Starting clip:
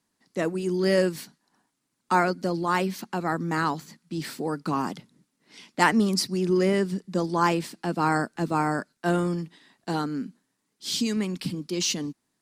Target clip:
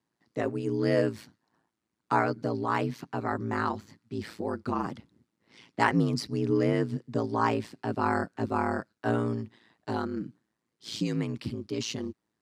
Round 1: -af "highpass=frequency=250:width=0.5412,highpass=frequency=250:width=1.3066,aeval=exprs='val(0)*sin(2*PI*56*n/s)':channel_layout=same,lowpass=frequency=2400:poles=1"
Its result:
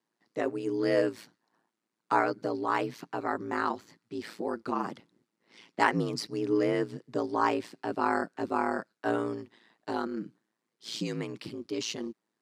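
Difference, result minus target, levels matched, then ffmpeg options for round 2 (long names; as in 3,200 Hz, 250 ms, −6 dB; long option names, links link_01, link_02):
125 Hz band −8.0 dB
-af "highpass=frequency=120:width=0.5412,highpass=frequency=120:width=1.3066,aeval=exprs='val(0)*sin(2*PI*56*n/s)':channel_layout=same,lowpass=frequency=2400:poles=1"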